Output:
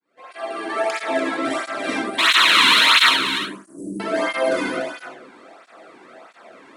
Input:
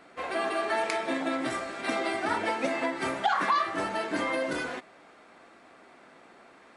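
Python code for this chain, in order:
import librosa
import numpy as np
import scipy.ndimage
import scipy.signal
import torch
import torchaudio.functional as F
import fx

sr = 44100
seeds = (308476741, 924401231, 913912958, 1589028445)

y = fx.fade_in_head(x, sr, length_s=1.13)
y = fx.cheby2_bandstop(y, sr, low_hz=910.0, high_hz=3500.0, order=4, stop_db=60, at=(1.99, 4.0))
y = fx.spec_paint(y, sr, seeds[0], shape='noise', start_s=2.18, length_s=0.92, low_hz=910.0, high_hz=4300.0, level_db=-18.0)
y = 10.0 ** (-16.5 / 20.0) * np.tanh(y / 10.0 ** (-16.5 / 20.0))
y = y + 10.0 ** (-8.5 / 20.0) * np.pad(y, (int(291 * sr / 1000.0), 0))[:len(y)]
y = fx.rev_freeverb(y, sr, rt60_s=0.69, hf_ratio=0.35, predelay_ms=20, drr_db=-2.0)
y = fx.flanger_cancel(y, sr, hz=1.5, depth_ms=1.7)
y = y * 10.0 ** (6.5 / 20.0)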